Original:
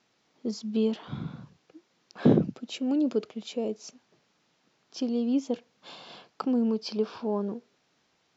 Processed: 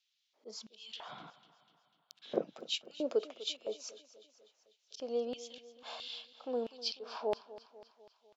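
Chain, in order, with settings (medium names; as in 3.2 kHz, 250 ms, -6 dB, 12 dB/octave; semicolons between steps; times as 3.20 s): spectral noise reduction 11 dB; slow attack 179 ms; in parallel at -1.5 dB: compression, threshold -39 dBFS, peak gain reduction 20 dB; 1.30–2.22 s: on the sum: power-law waveshaper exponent 3; LFO high-pass square 1.5 Hz 550–3300 Hz; on a send: feedback delay 248 ms, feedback 56%, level -17 dB; on the sum: trim -6 dB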